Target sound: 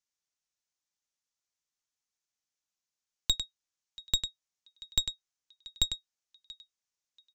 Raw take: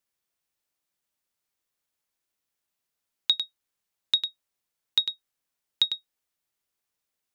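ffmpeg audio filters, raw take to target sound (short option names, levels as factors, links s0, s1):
-filter_complex "[0:a]lowpass=f=6400:t=q:w=2.9,asplit=2[s0][s1];[s1]aecho=0:1:684|1368:0.112|0.0202[s2];[s0][s2]amix=inputs=2:normalize=0,aeval=exprs='0.501*(cos(1*acos(clip(val(0)/0.501,-1,1)))-cos(1*PI/2))+0.141*(cos(4*acos(clip(val(0)/0.501,-1,1)))-cos(4*PI/2))':c=same,equalizer=f=410:w=0.8:g=-3.5,volume=0.376"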